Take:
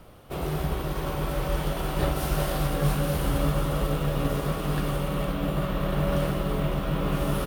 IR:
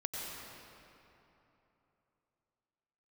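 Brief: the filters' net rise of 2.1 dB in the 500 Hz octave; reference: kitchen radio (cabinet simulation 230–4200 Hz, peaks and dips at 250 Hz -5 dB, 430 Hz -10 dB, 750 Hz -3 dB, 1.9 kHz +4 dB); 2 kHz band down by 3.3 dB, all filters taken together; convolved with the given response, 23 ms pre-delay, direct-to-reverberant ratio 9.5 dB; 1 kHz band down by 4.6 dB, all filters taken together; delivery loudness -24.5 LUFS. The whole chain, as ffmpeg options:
-filter_complex "[0:a]equalizer=f=500:t=o:g=9,equalizer=f=1000:t=o:g=-6,equalizer=f=2000:t=o:g=-5,asplit=2[s0][s1];[1:a]atrim=start_sample=2205,adelay=23[s2];[s1][s2]afir=irnorm=-1:irlink=0,volume=0.251[s3];[s0][s3]amix=inputs=2:normalize=0,highpass=230,equalizer=f=250:t=q:w=4:g=-5,equalizer=f=430:t=q:w=4:g=-10,equalizer=f=750:t=q:w=4:g=-3,equalizer=f=1900:t=q:w=4:g=4,lowpass=f=4200:w=0.5412,lowpass=f=4200:w=1.3066,volume=2"

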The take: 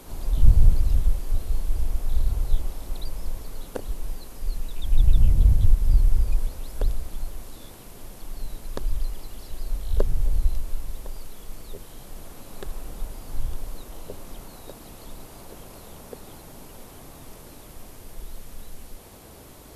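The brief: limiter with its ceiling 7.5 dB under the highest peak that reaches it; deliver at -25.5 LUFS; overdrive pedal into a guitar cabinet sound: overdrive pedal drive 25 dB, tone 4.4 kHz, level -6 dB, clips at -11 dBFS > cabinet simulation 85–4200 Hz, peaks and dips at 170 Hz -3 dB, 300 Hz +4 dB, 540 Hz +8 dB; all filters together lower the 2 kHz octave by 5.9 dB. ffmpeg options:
-filter_complex "[0:a]equalizer=f=2000:t=o:g=-8,alimiter=limit=0.282:level=0:latency=1,asplit=2[s0][s1];[s1]highpass=f=720:p=1,volume=17.8,asoftclip=type=tanh:threshold=0.282[s2];[s0][s2]amix=inputs=2:normalize=0,lowpass=f=4400:p=1,volume=0.501,highpass=85,equalizer=f=170:t=q:w=4:g=-3,equalizer=f=300:t=q:w=4:g=4,equalizer=f=540:t=q:w=4:g=8,lowpass=f=4200:w=0.5412,lowpass=f=4200:w=1.3066,volume=1.88"

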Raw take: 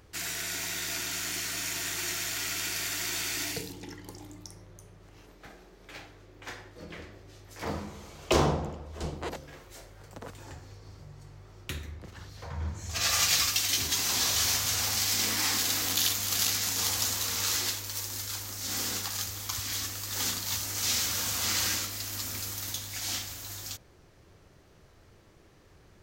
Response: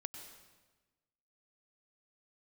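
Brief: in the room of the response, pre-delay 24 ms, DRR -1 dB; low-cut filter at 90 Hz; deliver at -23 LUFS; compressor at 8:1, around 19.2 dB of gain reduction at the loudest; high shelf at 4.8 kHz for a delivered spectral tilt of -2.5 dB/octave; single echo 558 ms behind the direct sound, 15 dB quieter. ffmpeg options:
-filter_complex "[0:a]highpass=90,highshelf=f=4800:g=-7,acompressor=threshold=0.00891:ratio=8,aecho=1:1:558:0.178,asplit=2[s0][s1];[1:a]atrim=start_sample=2205,adelay=24[s2];[s1][s2]afir=irnorm=-1:irlink=0,volume=1.5[s3];[s0][s3]amix=inputs=2:normalize=0,volume=7.08"

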